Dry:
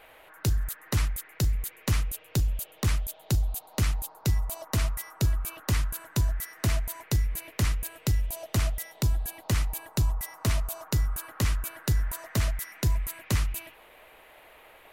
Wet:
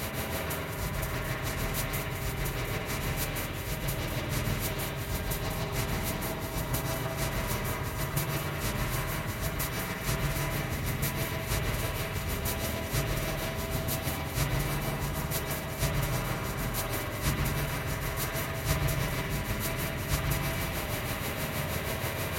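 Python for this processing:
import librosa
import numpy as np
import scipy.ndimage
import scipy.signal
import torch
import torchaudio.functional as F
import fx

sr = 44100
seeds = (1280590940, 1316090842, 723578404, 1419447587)

p1 = fx.bin_compress(x, sr, power=0.2)
p2 = fx.highpass(p1, sr, hz=130.0, slope=6)
p3 = fx.level_steps(p2, sr, step_db=12)
p4 = p2 + F.gain(torch.from_numpy(p3), -0.5).numpy()
p5 = fx.auto_swell(p4, sr, attack_ms=143.0)
p6 = fx.tremolo_shape(p5, sr, shape='triangle', hz=9.4, depth_pct=95)
p7 = fx.dmg_buzz(p6, sr, base_hz=400.0, harmonics=5, level_db=-51.0, tilt_db=-8, odd_only=False)
p8 = fx.stretch_vocoder(p7, sr, factor=1.5)
p9 = p8 + fx.echo_split(p8, sr, split_hz=590.0, low_ms=123, high_ms=218, feedback_pct=52, wet_db=-9.0, dry=0)
p10 = fx.rev_spring(p9, sr, rt60_s=2.0, pass_ms=(50, 55), chirp_ms=75, drr_db=-1.5)
y = F.gain(torch.from_numpy(p10), -5.0).numpy()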